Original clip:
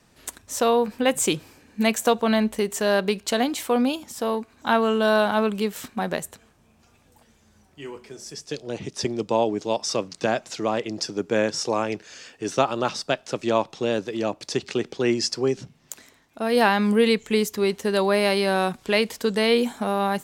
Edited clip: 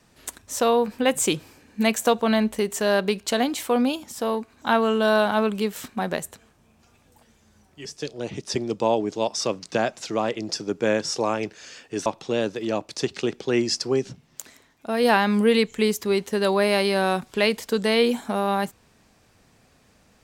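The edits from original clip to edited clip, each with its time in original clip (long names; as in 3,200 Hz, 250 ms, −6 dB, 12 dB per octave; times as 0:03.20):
0:07.85–0:08.34: remove
0:12.55–0:13.58: remove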